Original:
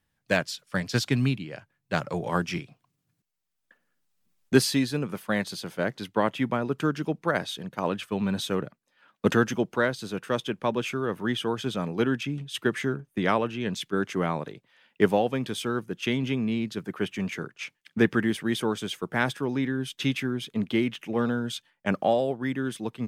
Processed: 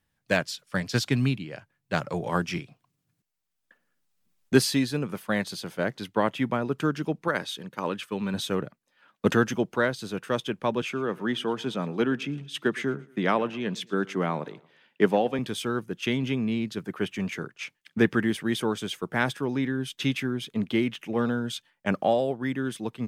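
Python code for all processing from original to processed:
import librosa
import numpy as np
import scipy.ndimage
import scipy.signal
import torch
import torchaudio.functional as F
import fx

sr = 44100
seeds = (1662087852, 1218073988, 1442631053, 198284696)

y = fx.chain(x, sr, fx.highpass(hz=200.0, slope=6),
    fx.peak_eq(hz=690.0, db=-9.5, octaves=0.24), at=(7.28, 8.34))
y = fx.chain(y, sr, fx.highpass(hz=140.0, slope=24),
    fx.high_shelf(hz=8200.0, db=-8.0),
    fx.echo_feedback(ms=114, feedback_pct=43, wet_db=-23.0), at=(10.82, 15.39))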